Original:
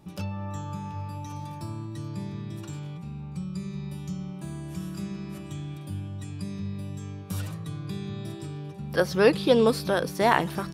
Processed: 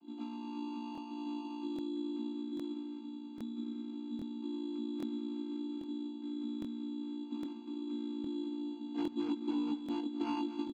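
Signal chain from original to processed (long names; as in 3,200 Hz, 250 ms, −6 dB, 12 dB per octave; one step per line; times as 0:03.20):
channel vocoder with a chord as carrier major triad, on A#3
hard clipping −22 dBFS, distortion −7 dB
formant filter u
downward compressor 5 to 1, threshold −38 dBFS, peak gain reduction 10 dB
double-tracking delay 18 ms −6.5 dB
decimation without filtering 12×
Bessel low-pass filter 3,300 Hz, order 4
on a send: single-tap delay 241 ms −13.5 dB
on the sum: regular buffer underruns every 0.81 s, samples 1,024, repeat, from 0:00.93
level +4.5 dB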